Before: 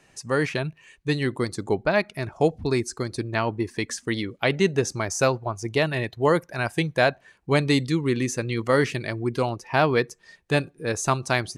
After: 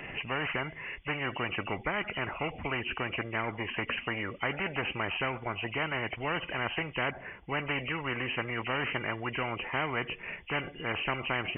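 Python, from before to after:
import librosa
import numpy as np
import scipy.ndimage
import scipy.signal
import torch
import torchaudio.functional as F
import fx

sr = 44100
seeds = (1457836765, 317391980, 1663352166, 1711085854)

y = fx.freq_compress(x, sr, knee_hz=1900.0, ratio=4.0)
y = fx.high_shelf(y, sr, hz=2100.0, db=-10.0, at=(7.1, 7.69))
y = fx.spectral_comp(y, sr, ratio=4.0)
y = F.gain(torch.from_numpy(y), -8.5).numpy()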